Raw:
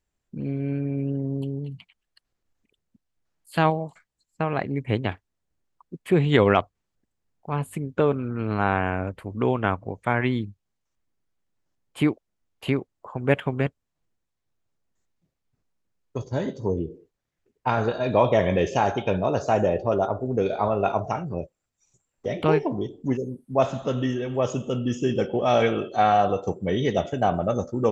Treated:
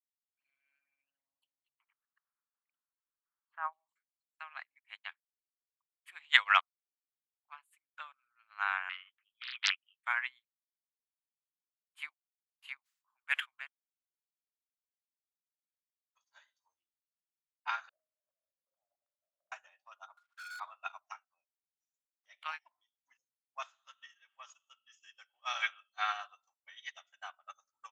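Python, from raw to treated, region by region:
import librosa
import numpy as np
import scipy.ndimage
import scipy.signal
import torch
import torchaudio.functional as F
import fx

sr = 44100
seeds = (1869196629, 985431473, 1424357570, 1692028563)

y = fx.chain(x, sr, fx.lowpass(hz=1300.0, slope=24),
    fx.env_flatten(amount_pct=50), at=(1.69, 3.73))
y = fx.chain(y, sr, fx.highpass(hz=950.0, slope=12),
    fx.freq_invert(carrier_hz=3600),
    fx.doppler_dist(depth_ms=0.91), at=(8.89, 10.02))
y = fx.chain(y, sr, fx.highpass(hz=1400.0, slope=6),
    fx.sustainer(db_per_s=75.0), at=(12.81, 13.51))
y = fx.chain(y, sr, fx.steep_lowpass(hz=630.0, slope=72),
    fx.over_compress(threshold_db=-34.0, ratio=-1.0), at=(17.89, 19.52))
y = fx.chain(y, sr, fx.ladder_bandpass(hz=1500.0, resonance_pct=85),
    fx.leveller(passes=5), at=(20.17, 20.6))
y = scipy.signal.sosfilt(scipy.signal.cheby2(4, 50, 460.0, 'highpass', fs=sr, output='sos'), y)
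y = fx.upward_expand(y, sr, threshold_db=-47.0, expansion=2.5)
y = y * 10.0 ** (5.0 / 20.0)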